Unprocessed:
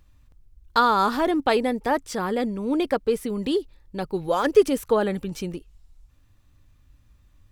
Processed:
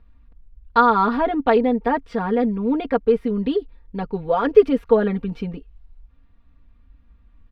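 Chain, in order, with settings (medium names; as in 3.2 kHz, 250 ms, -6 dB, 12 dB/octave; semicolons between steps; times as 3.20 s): distance through air 390 m; comb 4.3 ms, depth 89%; trim +1.5 dB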